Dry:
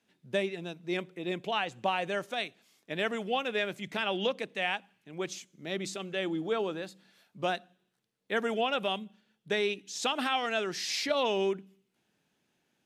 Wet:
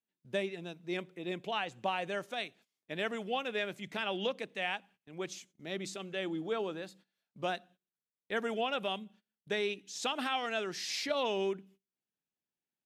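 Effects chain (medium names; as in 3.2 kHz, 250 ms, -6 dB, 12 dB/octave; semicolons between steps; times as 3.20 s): gate -55 dBFS, range -19 dB; trim -4 dB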